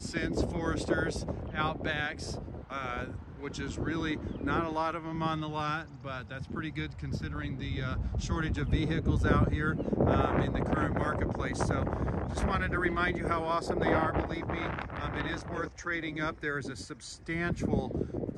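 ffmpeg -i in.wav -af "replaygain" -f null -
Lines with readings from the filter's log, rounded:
track_gain = +13.6 dB
track_peak = 0.152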